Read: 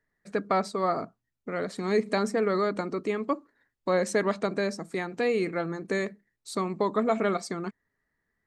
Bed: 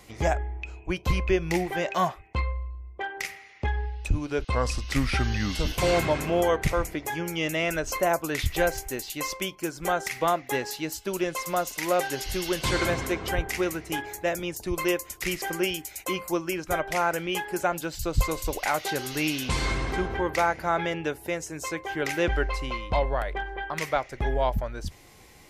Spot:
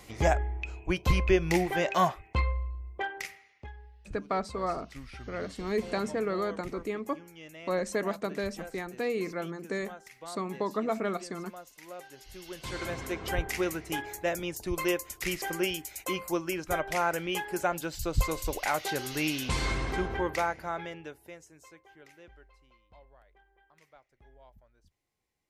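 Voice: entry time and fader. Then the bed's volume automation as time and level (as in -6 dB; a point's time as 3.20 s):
3.80 s, -5.0 dB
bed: 3.01 s 0 dB
3.78 s -20 dB
12.15 s -20 dB
13.37 s -3 dB
20.23 s -3 dB
22.48 s -32 dB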